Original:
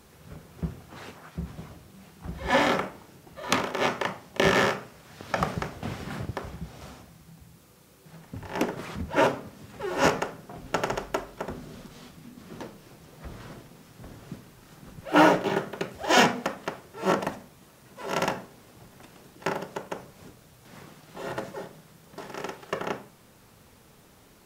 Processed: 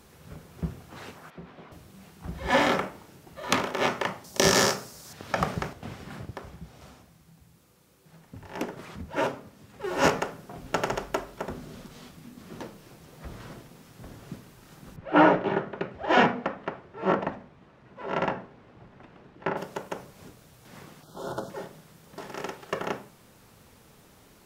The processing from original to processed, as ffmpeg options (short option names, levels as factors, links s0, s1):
-filter_complex "[0:a]asettb=1/sr,asplit=3[s0][s1][s2];[s0]atrim=end=1.304[s3];[s1]atrim=start=1.3:end=1.72,asetpts=PTS-STARTPTS,afade=t=in:d=0.004:c=qsin,afade=t=out:st=0.416:d=0.004:c=qsin,acrossover=split=230 4000:gain=0.1 1 0.0708[s4][s5][s6];[s4][s5][s6]amix=inputs=3:normalize=0[s7];[s2]atrim=start=1.716[s8];[s3][s7]acrossfade=d=0.004:c1=hsin:c2=qsin[s9];[s9][s8]acrossfade=d=0.004:c1=qsin:c2=hsin,asettb=1/sr,asplit=3[s10][s11][s12];[s10]atrim=end=4.244[s13];[s11]atrim=start=4.24:end=5.13,asetpts=PTS-STARTPTS,afade=t=in:d=0.004:c=qsin,afade=t=out:st=0.886:d=0.004:c=qsin,highshelf=f=3800:t=q:w=1.5:g=11[s14];[s12]atrim=start=5.126[s15];[s13][s14]acrossfade=d=0.004:c1=hsin:c2=qsin[s16];[s16][s15]acrossfade=d=0.004:c1=qsin:c2=hsin,asettb=1/sr,asplit=3[s17][s18][s19];[s17]atrim=end=14.964[s20];[s18]atrim=start=14.96:end=19.57,asetpts=PTS-STARTPTS,afade=t=in:d=0.004:c=qsin,afade=t=out:st=4.606:d=0.004:c=qsin,lowpass=2300[s21];[s19]atrim=start=19.566[s22];[s20][s21]acrossfade=d=0.004:c1=hsin:c2=qsin[s23];[s23][s22]acrossfade=d=0.004:c1=qsin:c2=hsin,asettb=1/sr,asplit=3[s24][s25][s26];[s24]atrim=end=21.034[s27];[s25]atrim=start=21.03:end=21.5,asetpts=PTS-STARTPTS,afade=t=in:d=0.004:c=qsin,afade=t=out:st=0.466:d=0.004:c=qsin,asuperstop=centerf=2200:order=8:qfactor=1.3[s28];[s26]atrim=start=21.496[s29];[s27][s28]acrossfade=d=0.004:c1=hsin:c2=qsin[s30];[s30][s29]acrossfade=d=0.004:c1=qsin:c2=hsin,asplit=3[s31][s32][s33];[s31]atrim=end=5.732[s34];[s32]atrim=start=5.728:end=9.842,asetpts=PTS-STARTPTS,volume=0.531[s35];[s33]atrim=start=9.838[s36];[s34][s35]acrossfade=d=0.004:c1=hsin:c2=hsin[s37];[s37][s36]acrossfade=d=0.004:c1=hsin:c2=hsin"